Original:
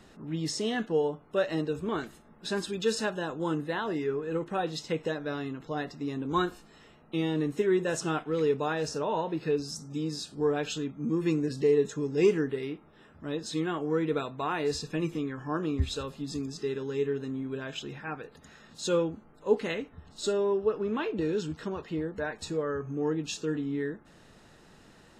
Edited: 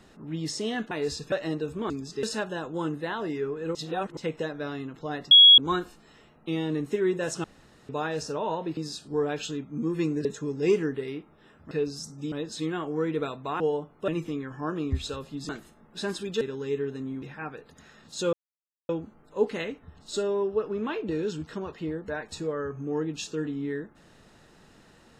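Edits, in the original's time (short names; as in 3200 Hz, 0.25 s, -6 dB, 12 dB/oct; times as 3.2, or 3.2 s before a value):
0.91–1.39 swap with 14.54–14.95
1.97–2.89 swap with 16.36–16.69
4.41–4.83 reverse
5.97–6.24 bleep 3330 Hz -9.5 dBFS
8.1–8.55 room tone
9.43–10.04 move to 13.26
11.52–11.8 cut
17.5–17.88 cut
18.99 insert silence 0.56 s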